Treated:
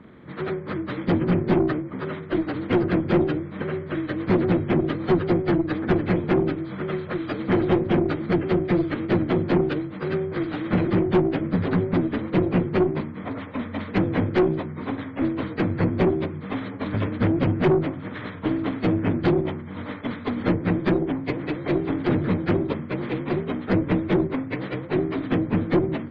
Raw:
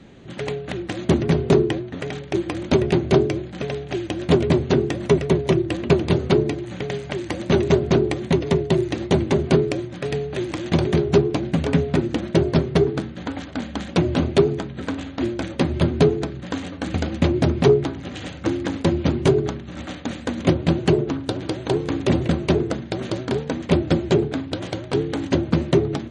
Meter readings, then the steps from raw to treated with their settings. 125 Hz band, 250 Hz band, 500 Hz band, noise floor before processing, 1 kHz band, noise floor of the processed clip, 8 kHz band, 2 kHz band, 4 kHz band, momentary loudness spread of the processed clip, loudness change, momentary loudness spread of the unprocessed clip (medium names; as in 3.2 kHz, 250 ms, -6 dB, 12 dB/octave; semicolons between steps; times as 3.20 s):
-3.5 dB, -0.5 dB, -4.0 dB, -36 dBFS, -1.0 dB, -36 dBFS, under -25 dB, -0.5 dB, -9.0 dB, 9 LU, -2.5 dB, 11 LU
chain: frequency axis rescaled in octaves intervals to 79%; valve stage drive 16 dB, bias 0.45; trim +3 dB